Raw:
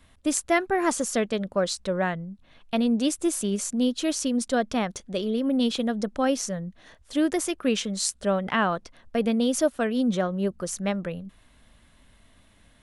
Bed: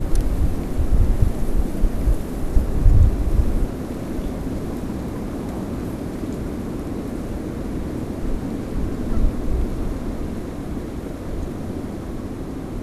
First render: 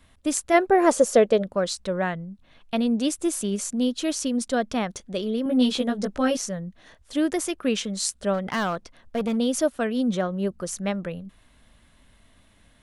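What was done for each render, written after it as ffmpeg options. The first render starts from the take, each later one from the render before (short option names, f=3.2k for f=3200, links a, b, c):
-filter_complex "[0:a]asplit=3[a][b][c];[a]afade=t=out:st=0.53:d=0.02[d];[b]equalizer=f=530:t=o:w=0.99:g=13,afade=t=in:st=0.53:d=0.02,afade=t=out:st=1.42:d=0.02[e];[c]afade=t=in:st=1.42:d=0.02[f];[d][e][f]amix=inputs=3:normalize=0,asettb=1/sr,asplit=3[g][h][i];[g]atrim=end=5.444[j];[h]atrim=start=5.44:end=6.37,asetpts=PTS-STARTPTS,afade=t=in:d=0.004:c=qsin,afade=t=out:st=0.926:d=0.004:c=qsin,asplit=2[k][l];[l]adelay=16,volume=-2dB[m];[k][m]amix=inputs=2:normalize=0,atrim=end_sample=41013[n];[i]atrim=start=6.366[o];[j][n]acrossfade=d=0.004:c1=hsin:c2=qsin[p];[p][o]acrossfade=d=0.004:c1=qsin:c2=hsin,asplit=3[q][r][s];[q]afade=t=out:st=8.33:d=0.02[t];[r]asoftclip=type=hard:threshold=-20.5dB,afade=t=in:st=8.33:d=0.02,afade=t=out:st=9.36:d=0.02[u];[s]afade=t=in:st=9.36:d=0.02[v];[t][u][v]amix=inputs=3:normalize=0"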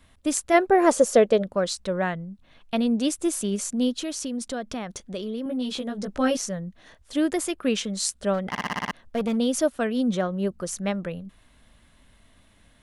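-filter_complex "[0:a]asettb=1/sr,asplit=3[a][b][c];[a]atrim=end=3.994[d];[b]atrim=start=3.99:end=6.08,asetpts=PTS-STARTPTS,afade=t=in:d=0.004:c=qsin,afade=t=out:st=2.086:d=0.004:c=qsin,acompressor=threshold=-29dB:ratio=2.5:attack=3.2:release=140:knee=1:detection=peak[e];[c]atrim=start=6.076[f];[d][e]acrossfade=d=0.004:c1=hsin:c2=qsin[g];[g][f]acrossfade=d=0.004:c1=qsin:c2=hsin,asettb=1/sr,asplit=3[h][i][j];[h]atrim=end=7.254[k];[i]atrim=start=7.25:end=7.65,asetpts=PTS-STARTPTS,afade=t=in:d=0.004:c=qsin,afade=t=out:st=0.396:d=0.004:c=qsin,bandreject=f=5.9k:w=8.2[l];[j]atrim=start=7.646[m];[k][l]acrossfade=d=0.004:c1=hsin:c2=qsin[n];[n][m]acrossfade=d=0.004:c1=qsin:c2=hsin,asplit=8[o][p][q][r][s][t][u][v];[o]atrim=end=8.552[w];[p]atrim=start=8.488:end=8.552[x];[q]atrim=start=8.488:end=8.552[y];[r]atrim=start=8.488:end=8.552[z];[s]atrim=start=8.488:end=8.552[aa];[t]atrim=start=8.488:end=8.552[ab];[u]atrim=start=8.488:end=8.552[ac];[v]atrim=start=8.908[ad];[w][x]acrossfade=d=0.004:c1=hsin:c2=hsin[ae];[ae][y]acrossfade=d=0.004:c1=hsin:c2=hsin[af];[af][z]acrossfade=d=0.004:c1=hsin:c2=hsin[ag];[ag][aa]acrossfade=d=0.004:c1=hsin:c2=hsin[ah];[ah][ab]acrossfade=d=0.004:c1=hsin:c2=hsin[ai];[ai][ac]acrossfade=d=0.004:c1=hsin:c2=hsin[aj];[aj][ad]acrossfade=d=0.004:c1=hsin:c2=hsin"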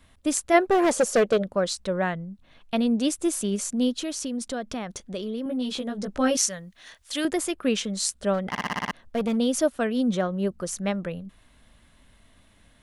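-filter_complex "[0:a]asettb=1/sr,asplit=3[a][b][c];[a]atrim=end=0.594[d];[b]atrim=start=0.59:end=1.52,asetpts=PTS-STARTPTS,afade=t=in:d=0.004:c=qsin,afade=t=out:st=0.926:d=0.004:c=qsin,asoftclip=type=hard:threshold=-15.5dB[e];[c]atrim=start=1.516[f];[d][e]acrossfade=d=0.004:c1=hsin:c2=qsin[g];[g][f]acrossfade=d=0.004:c1=qsin:c2=hsin,asettb=1/sr,asplit=3[h][i][j];[h]atrim=end=6.374[k];[i]atrim=start=6.37:end=7.25,asetpts=PTS-STARTPTS,afade=t=in:d=0.004:c=qsin,afade=t=out:st=0.876:d=0.004:c=qsin,tiltshelf=f=970:g=-9[l];[j]atrim=start=7.246[m];[k][l]acrossfade=d=0.004:c1=hsin:c2=qsin[n];[n][m]acrossfade=d=0.004:c1=qsin:c2=hsin"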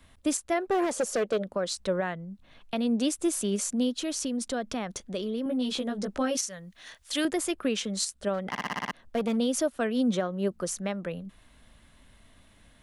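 -filter_complex "[0:a]acrossover=split=170[a][b];[a]acompressor=threshold=-46dB:ratio=6[c];[c][b]amix=inputs=2:normalize=0,alimiter=limit=-18dB:level=0:latency=1:release=281"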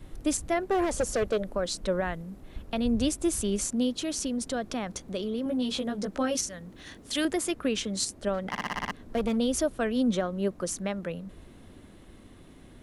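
-filter_complex "[1:a]volume=-23.5dB[a];[0:a][a]amix=inputs=2:normalize=0"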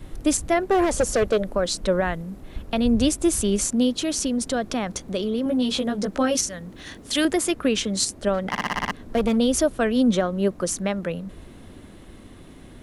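-af "volume=6.5dB"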